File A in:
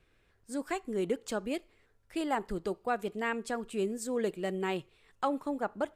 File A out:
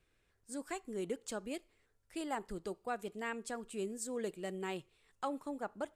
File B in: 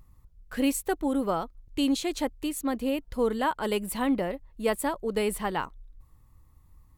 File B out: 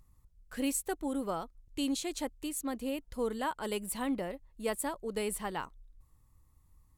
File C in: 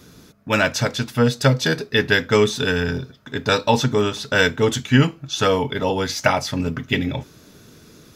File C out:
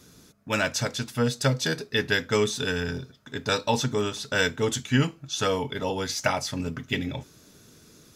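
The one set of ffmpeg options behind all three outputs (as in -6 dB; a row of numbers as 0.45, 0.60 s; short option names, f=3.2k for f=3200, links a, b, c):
-af "equalizer=f=8.4k:t=o:w=1.4:g=7,volume=-7.5dB"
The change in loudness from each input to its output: -7.0, -7.0, -7.0 LU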